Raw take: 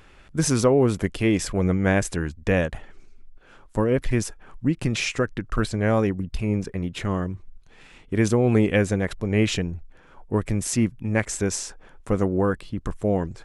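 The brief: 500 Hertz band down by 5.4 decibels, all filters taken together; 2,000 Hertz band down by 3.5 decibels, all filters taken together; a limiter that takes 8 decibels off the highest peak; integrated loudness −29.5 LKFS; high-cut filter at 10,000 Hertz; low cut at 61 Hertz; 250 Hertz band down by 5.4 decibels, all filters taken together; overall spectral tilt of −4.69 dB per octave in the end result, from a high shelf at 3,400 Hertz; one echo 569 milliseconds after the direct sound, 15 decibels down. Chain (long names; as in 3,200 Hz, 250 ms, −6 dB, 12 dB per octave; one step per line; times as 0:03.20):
high-pass filter 61 Hz
low-pass filter 10,000 Hz
parametric band 250 Hz −6 dB
parametric band 500 Hz −4.5 dB
parametric band 2,000 Hz −5.5 dB
high-shelf EQ 3,400 Hz +4.5 dB
brickwall limiter −17 dBFS
single-tap delay 569 ms −15 dB
level −0.5 dB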